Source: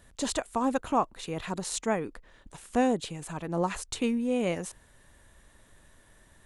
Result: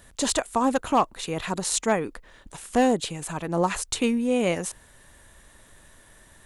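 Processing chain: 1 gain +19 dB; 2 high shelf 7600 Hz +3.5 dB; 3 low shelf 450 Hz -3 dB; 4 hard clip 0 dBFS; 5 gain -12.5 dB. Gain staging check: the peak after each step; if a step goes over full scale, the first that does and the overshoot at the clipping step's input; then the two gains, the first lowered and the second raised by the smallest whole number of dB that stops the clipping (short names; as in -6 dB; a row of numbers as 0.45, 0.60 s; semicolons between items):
+6.0, +6.0, +5.0, 0.0, -12.5 dBFS; step 1, 5.0 dB; step 1 +14 dB, step 5 -7.5 dB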